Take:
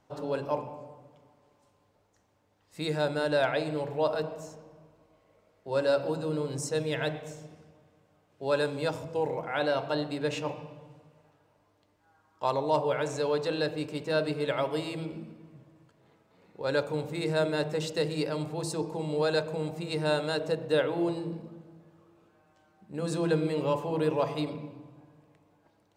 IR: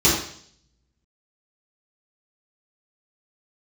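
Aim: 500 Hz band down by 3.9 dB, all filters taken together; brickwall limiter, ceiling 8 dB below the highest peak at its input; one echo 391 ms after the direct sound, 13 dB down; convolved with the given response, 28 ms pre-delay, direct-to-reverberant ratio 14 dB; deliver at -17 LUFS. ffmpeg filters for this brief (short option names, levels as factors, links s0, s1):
-filter_complex "[0:a]equalizer=f=500:t=o:g=-4.5,alimiter=limit=0.0631:level=0:latency=1,aecho=1:1:391:0.224,asplit=2[s0][s1];[1:a]atrim=start_sample=2205,adelay=28[s2];[s1][s2]afir=irnorm=-1:irlink=0,volume=0.0211[s3];[s0][s3]amix=inputs=2:normalize=0,volume=7.5"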